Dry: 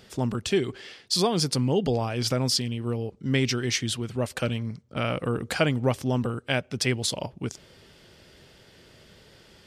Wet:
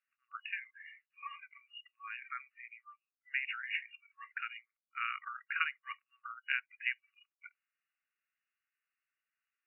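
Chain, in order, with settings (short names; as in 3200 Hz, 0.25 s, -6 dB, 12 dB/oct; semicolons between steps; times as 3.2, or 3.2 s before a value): spectral noise reduction 28 dB; FFT band-pass 1100–2900 Hz; gain -3.5 dB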